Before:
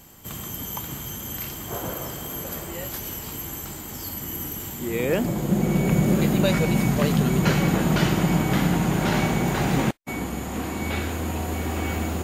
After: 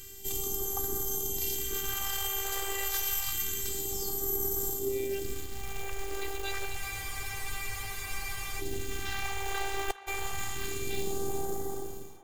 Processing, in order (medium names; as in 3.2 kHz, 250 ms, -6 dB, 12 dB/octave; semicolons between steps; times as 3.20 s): fade out at the end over 1.67 s; reverse; compression 12:1, threshold -29 dBFS, peak gain reduction 15 dB; reverse; robot voice 393 Hz; short-mantissa float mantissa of 2-bit; phase shifter stages 2, 0.28 Hz, lowest notch 200–2400 Hz; on a send: band-passed feedback delay 406 ms, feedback 69%, band-pass 1.1 kHz, level -12 dB; on the sum: spectral freeze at 6.81 s, 1.80 s; trim +6 dB